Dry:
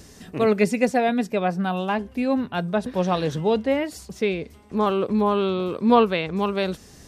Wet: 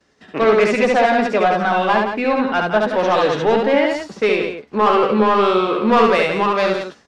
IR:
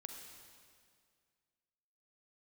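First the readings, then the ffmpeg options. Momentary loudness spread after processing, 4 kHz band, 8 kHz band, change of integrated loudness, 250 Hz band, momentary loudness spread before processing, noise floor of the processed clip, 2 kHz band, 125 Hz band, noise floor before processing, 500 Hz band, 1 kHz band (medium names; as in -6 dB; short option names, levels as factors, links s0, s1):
5 LU, +7.0 dB, no reading, +6.5 dB, +2.5 dB, 7 LU, -50 dBFS, +10.5 dB, -1.0 dB, -48 dBFS, +7.0 dB, +9.0 dB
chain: -filter_complex "[0:a]lowpass=6000,agate=range=0.0224:threshold=0.02:ratio=3:detection=peak,equalizer=f=1400:w=1.5:g=3,acrossover=split=180[s0][s1];[s0]acompressor=threshold=0.00562:ratio=6[s2];[s2][s1]amix=inputs=2:normalize=0,asplit=2[s3][s4];[s4]highpass=f=720:p=1,volume=8.91,asoftclip=type=tanh:threshold=0.631[s5];[s3][s5]amix=inputs=2:normalize=0,lowpass=f=2100:p=1,volume=0.501,asoftclip=type=tanh:threshold=0.422,asplit=2[s6][s7];[s7]adelay=14,volume=0.282[s8];[s6][s8]amix=inputs=2:normalize=0,aecho=1:1:69.97|172:0.708|0.398"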